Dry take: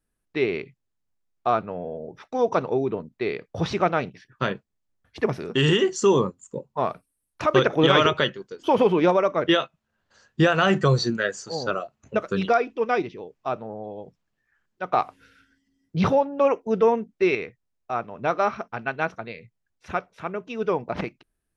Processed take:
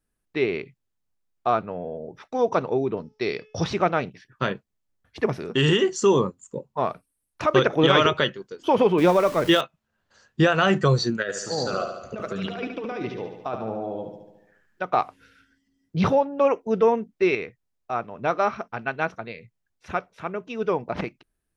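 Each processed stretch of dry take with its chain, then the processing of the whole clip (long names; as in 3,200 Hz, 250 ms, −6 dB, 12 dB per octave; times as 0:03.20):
0:02.97–0:03.64: low-pass with resonance 5,400 Hz, resonance Q 15 + hum removal 429.4 Hz, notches 8
0:08.98–0:09.61: converter with a step at zero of −32.5 dBFS + bass and treble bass +3 dB, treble +4 dB
0:11.22–0:14.83: compressor whose output falls as the input rises −29 dBFS + repeating echo 72 ms, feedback 60%, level −7 dB
whole clip: no processing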